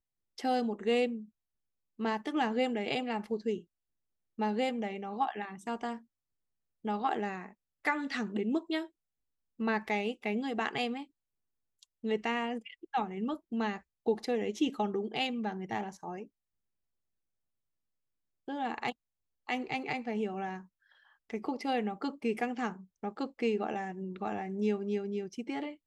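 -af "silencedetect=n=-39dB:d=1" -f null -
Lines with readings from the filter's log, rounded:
silence_start: 16.23
silence_end: 18.48 | silence_duration: 2.25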